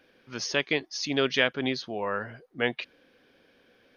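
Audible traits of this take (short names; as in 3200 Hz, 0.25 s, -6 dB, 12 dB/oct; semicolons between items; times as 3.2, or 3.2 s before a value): noise floor -64 dBFS; spectral tilt -3.5 dB/oct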